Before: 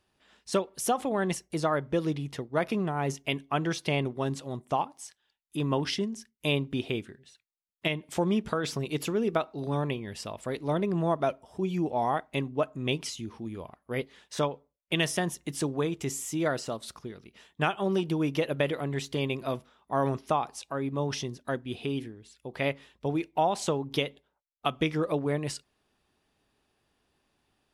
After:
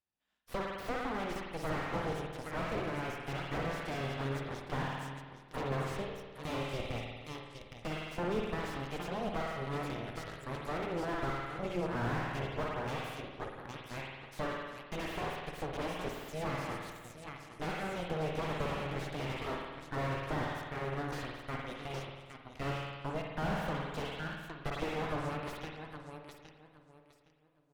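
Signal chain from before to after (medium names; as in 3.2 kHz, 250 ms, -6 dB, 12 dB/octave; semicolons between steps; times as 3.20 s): peaking EQ 400 Hz -6.5 dB 0.34 oct; on a send: feedback delay 814 ms, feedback 42%, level -8 dB; on the sum: Chebyshev shaper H 3 -19 dB, 6 -10 dB, 7 -19 dB, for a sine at -12.5 dBFS; spring tank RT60 1.4 s, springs 51 ms, chirp 40 ms, DRR 3.5 dB; slew-rate limiter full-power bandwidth 35 Hz; trim -5 dB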